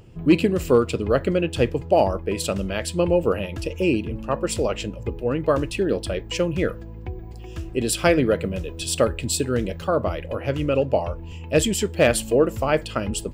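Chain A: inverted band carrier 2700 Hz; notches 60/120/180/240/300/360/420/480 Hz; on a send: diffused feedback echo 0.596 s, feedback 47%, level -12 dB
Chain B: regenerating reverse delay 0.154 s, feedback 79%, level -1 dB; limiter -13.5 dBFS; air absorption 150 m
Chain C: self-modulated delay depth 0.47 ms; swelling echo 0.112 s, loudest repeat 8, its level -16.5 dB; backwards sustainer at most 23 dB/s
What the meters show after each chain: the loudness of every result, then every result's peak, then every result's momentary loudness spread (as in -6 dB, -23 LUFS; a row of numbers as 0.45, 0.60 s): -19.5, -23.5, -20.5 LUFS; -3.0, -13.5, -2.5 dBFS; 9, 2, 6 LU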